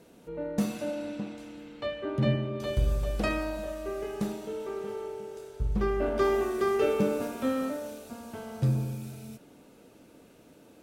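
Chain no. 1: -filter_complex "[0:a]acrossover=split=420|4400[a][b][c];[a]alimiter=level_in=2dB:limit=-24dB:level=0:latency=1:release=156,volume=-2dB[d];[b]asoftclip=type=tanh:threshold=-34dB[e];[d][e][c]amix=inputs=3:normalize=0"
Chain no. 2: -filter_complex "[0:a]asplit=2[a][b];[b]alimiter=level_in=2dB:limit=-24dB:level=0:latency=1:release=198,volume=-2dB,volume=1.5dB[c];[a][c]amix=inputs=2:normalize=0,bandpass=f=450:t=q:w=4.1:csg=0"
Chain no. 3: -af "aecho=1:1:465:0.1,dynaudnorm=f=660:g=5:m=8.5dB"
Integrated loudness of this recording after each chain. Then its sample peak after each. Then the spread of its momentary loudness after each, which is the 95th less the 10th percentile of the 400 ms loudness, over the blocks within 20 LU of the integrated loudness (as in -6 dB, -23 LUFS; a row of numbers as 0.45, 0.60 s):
-34.5, -33.0, -23.0 LUFS; -22.0, -15.5, -6.0 dBFS; 12, 16, 16 LU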